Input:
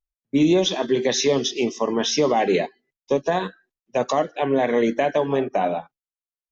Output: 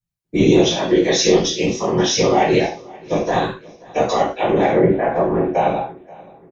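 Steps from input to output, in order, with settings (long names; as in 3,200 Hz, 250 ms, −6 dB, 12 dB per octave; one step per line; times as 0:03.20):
0:04.71–0:05.54: low-pass filter 1,700 Hz 24 dB per octave
random phases in short frames
repeating echo 531 ms, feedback 42%, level −23 dB
reverb whose tail is shaped and stops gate 140 ms falling, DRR −7 dB
level −3 dB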